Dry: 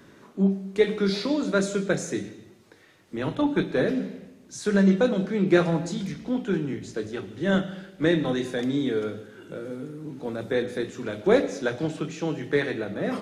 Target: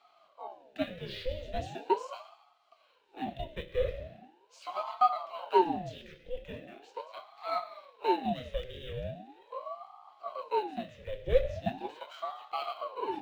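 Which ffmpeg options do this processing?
ffmpeg -i in.wav -filter_complex "[0:a]afreqshift=-260,asplit=3[link_01][link_02][link_03];[link_01]bandpass=frequency=270:width_type=q:width=8,volume=0dB[link_04];[link_02]bandpass=frequency=2290:width_type=q:width=8,volume=-6dB[link_05];[link_03]bandpass=frequency=3010:width_type=q:width=8,volume=-9dB[link_06];[link_04][link_05][link_06]amix=inputs=3:normalize=0,acrossover=split=320|1500[link_07][link_08][link_09];[link_09]acrusher=bits=5:mode=log:mix=0:aa=0.000001[link_10];[link_07][link_08][link_10]amix=inputs=3:normalize=0,aeval=exprs='val(0)*sin(2*PI*620*n/s+620*0.6/0.4*sin(2*PI*0.4*n/s))':channel_layout=same,volume=7dB" out.wav

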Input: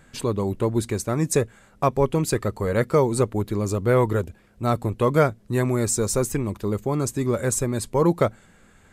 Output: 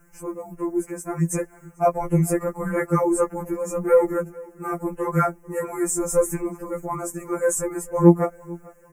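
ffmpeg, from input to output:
ffmpeg -i in.wav -filter_complex "[0:a]dynaudnorm=framelen=400:gausssize=7:maxgain=14.5dB,acrusher=bits=8:mix=0:aa=0.000001,asuperstop=centerf=3800:order=4:qfactor=0.74,asplit=2[link_01][link_02];[link_02]adelay=443,lowpass=frequency=2900:poles=1,volume=-22dB,asplit=2[link_03][link_04];[link_04]adelay=443,lowpass=frequency=2900:poles=1,volume=0.4,asplit=2[link_05][link_06];[link_06]adelay=443,lowpass=frequency=2900:poles=1,volume=0.4[link_07];[link_03][link_05][link_07]amix=inputs=3:normalize=0[link_08];[link_01][link_08]amix=inputs=2:normalize=0,afftfilt=real='re*2.83*eq(mod(b,8),0)':imag='im*2.83*eq(mod(b,8),0)':win_size=2048:overlap=0.75,volume=-2.5dB" out.wav

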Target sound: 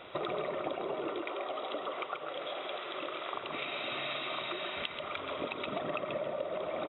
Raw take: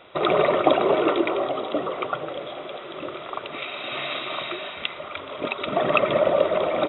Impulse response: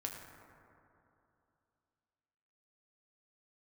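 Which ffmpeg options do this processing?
-filter_complex "[0:a]asettb=1/sr,asplit=3[link_01][link_02][link_03];[link_01]atrim=end=1.194[link_04];[link_02]atrim=start=1.19:end=3.34,asetpts=PTS-STARTPTS,afade=type=in:duration=0.004:curve=qsin,afade=type=out:start_time=2.146:duration=0.004:curve=qsin,highpass=frequency=750:poles=1[link_05];[link_03]atrim=start=3.336[link_06];[link_04][link_05]acrossfade=duration=0.004:curve1=hsin:curve2=qsin[link_07];[link_07][link_06]acrossfade=duration=0.004:curve1=qsin:curve2=hsin,acompressor=threshold=-35dB:ratio=6,aecho=1:1:135:0.447"

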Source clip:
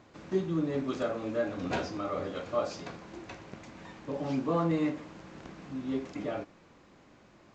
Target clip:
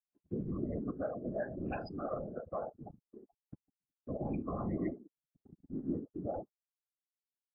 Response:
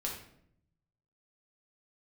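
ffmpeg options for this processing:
-af "afftfilt=real='re*gte(hypot(re,im),0.0398)':imag='im*gte(hypot(re,im),0.0398)':win_size=1024:overlap=0.75,agate=range=-40dB:threshold=-54dB:ratio=16:detection=peak,aecho=1:1:1.2:0.56,alimiter=level_in=2.5dB:limit=-24dB:level=0:latency=1:release=214,volume=-2.5dB,acompressor=mode=upward:threshold=-52dB:ratio=2.5,afftfilt=real='hypot(re,im)*cos(2*PI*random(0))':imag='hypot(re,im)*sin(2*PI*random(1))':win_size=512:overlap=0.75,asuperstop=centerf=930:order=12:qfactor=7,volume=4.5dB" -ar 12000 -c:a libmp3lame -b:a 16k

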